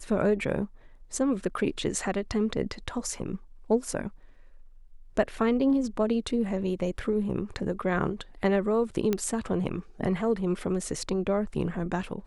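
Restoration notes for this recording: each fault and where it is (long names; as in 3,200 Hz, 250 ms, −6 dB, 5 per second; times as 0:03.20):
0:09.13: click −13 dBFS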